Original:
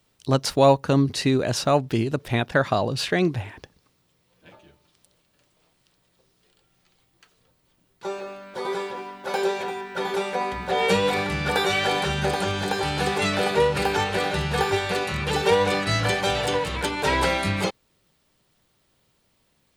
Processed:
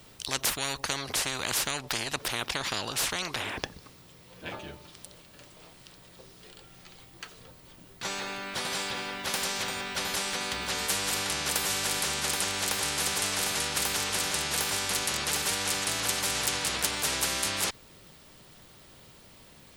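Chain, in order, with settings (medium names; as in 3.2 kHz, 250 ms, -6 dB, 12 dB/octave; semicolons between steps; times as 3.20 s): spectrum-flattening compressor 10:1; trim -3.5 dB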